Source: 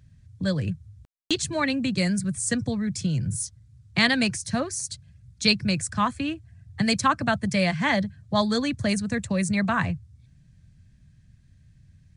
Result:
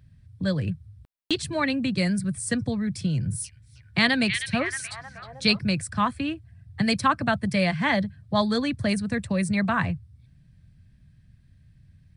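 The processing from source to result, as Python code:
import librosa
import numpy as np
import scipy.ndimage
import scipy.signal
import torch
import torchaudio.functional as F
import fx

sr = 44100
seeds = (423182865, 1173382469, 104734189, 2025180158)

y = fx.peak_eq(x, sr, hz=6700.0, db=-11.5, octaves=0.46)
y = fx.echo_stepped(y, sr, ms=313, hz=2700.0, octaves=-0.7, feedback_pct=70, wet_db=-4, at=(3.13, 5.59))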